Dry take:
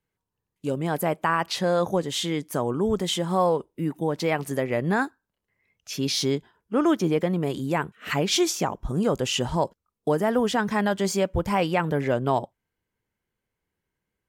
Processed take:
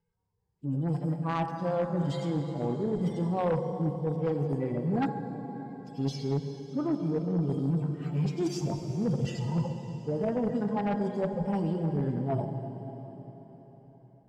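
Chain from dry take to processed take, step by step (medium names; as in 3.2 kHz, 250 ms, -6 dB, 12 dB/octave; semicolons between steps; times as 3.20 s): harmonic-percussive separation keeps harmonic; tilt EQ -3 dB/octave; reverse; compression 20:1, threshold -26 dBFS, peak gain reduction 14.5 dB; reverse; plate-style reverb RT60 4.5 s, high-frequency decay 0.9×, DRR 4 dB; in parallel at -8 dB: saturation -27.5 dBFS, distortion -12 dB; on the sum: graphic EQ with 31 bands 500 Hz +3 dB, 800 Hz +9 dB, 5 kHz +11 dB, 8 kHz +7 dB; Chebyshev shaper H 5 -10 dB, 7 -15 dB, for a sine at -13 dBFS; trim -6.5 dB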